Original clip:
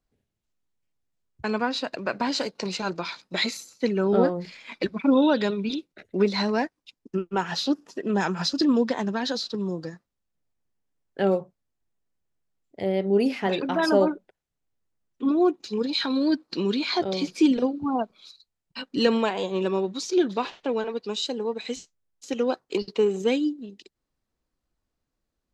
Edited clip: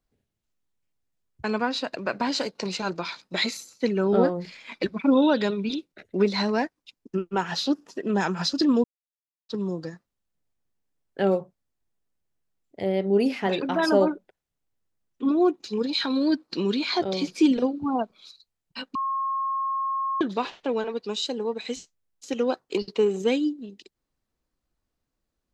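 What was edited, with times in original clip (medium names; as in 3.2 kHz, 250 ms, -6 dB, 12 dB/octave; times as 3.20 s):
8.84–9.49 s: mute
18.95–20.21 s: bleep 1.08 kHz -24 dBFS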